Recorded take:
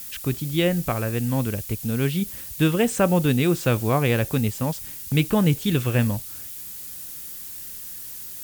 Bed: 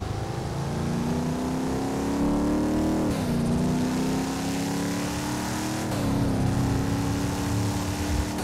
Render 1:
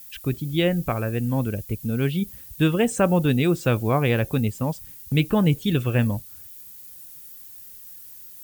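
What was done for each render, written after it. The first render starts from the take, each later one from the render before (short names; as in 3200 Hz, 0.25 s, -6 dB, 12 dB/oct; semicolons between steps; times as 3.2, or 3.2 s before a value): denoiser 11 dB, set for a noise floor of -37 dBFS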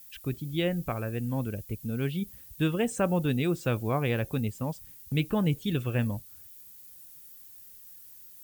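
gain -7 dB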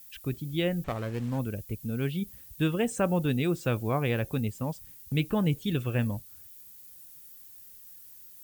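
0.84–1.39 running maximum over 9 samples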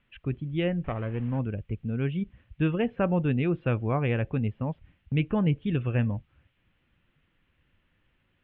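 steep low-pass 3000 Hz 48 dB/oct; low shelf 140 Hz +5 dB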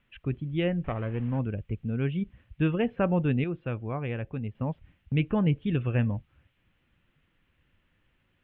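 3.44–4.55 gain -6 dB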